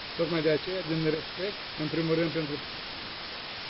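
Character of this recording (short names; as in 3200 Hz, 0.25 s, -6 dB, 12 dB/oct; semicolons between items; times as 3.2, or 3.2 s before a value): random-step tremolo, depth 75%; a quantiser's noise floor 6-bit, dither triangular; MP3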